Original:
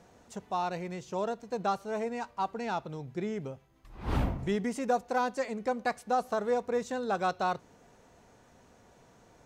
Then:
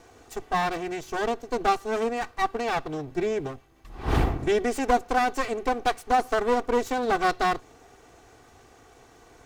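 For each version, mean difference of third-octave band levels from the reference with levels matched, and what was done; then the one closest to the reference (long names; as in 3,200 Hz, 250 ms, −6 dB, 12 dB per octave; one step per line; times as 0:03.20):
4.0 dB: lower of the sound and its delayed copy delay 2.6 ms
level +8 dB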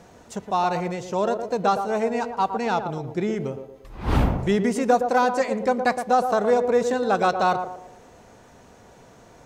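2.0 dB: feedback echo with a band-pass in the loop 115 ms, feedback 44%, band-pass 500 Hz, level −6 dB
level +9 dB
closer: second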